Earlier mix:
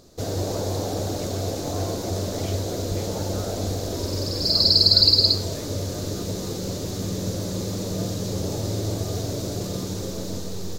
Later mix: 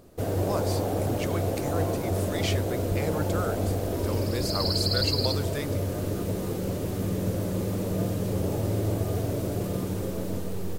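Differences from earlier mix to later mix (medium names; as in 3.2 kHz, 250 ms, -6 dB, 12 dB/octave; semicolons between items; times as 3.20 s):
speech +11.5 dB; background: add high-order bell 5.1 kHz -12.5 dB 1.2 oct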